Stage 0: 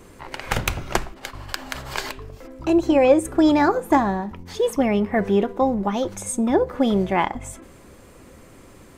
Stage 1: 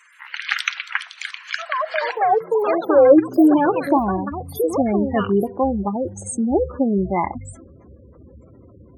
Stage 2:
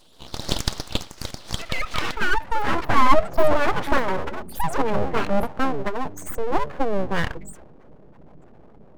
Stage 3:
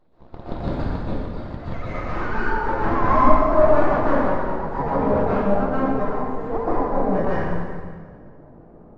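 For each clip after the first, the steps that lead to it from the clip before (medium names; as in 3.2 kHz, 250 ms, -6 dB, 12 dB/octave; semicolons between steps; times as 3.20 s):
high-pass sweep 1.7 kHz -> 73 Hz, 2.16–4.03 s; spectral gate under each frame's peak -15 dB strong; ever faster or slower copies 125 ms, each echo +6 st, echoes 2, each echo -6 dB
full-wave rectifier
median filter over 15 samples; tape spacing loss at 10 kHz 33 dB; plate-style reverb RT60 1.8 s, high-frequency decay 0.85×, pre-delay 110 ms, DRR -9.5 dB; trim -4 dB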